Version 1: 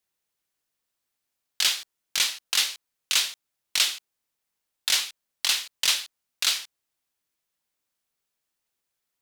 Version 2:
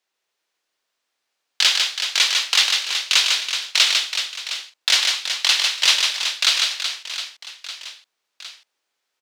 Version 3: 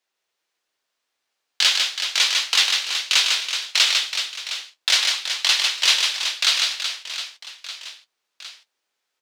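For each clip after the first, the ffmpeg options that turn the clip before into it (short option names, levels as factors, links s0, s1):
-filter_complex "[0:a]acrossover=split=300 6600:gain=0.126 1 0.178[s0][s1][s2];[s0][s1][s2]amix=inputs=3:normalize=0,aecho=1:1:150|375|712.5|1219|1978:0.631|0.398|0.251|0.158|0.1,volume=2.37"
-af "flanger=delay=7.5:depth=6.8:regen=-48:speed=1.6:shape=triangular,volume=1.41"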